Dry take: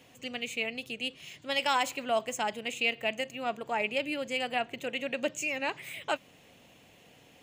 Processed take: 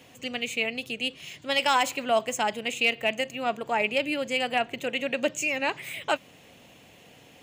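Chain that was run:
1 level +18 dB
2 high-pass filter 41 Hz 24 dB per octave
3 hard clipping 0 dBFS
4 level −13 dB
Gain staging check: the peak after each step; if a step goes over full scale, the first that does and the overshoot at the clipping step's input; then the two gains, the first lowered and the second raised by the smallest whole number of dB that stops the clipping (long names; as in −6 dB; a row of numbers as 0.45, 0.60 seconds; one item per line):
+3.0, +3.5, 0.0, −13.0 dBFS
step 1, 3.5 dB
step 1 +14 dB, step 4 −9 dB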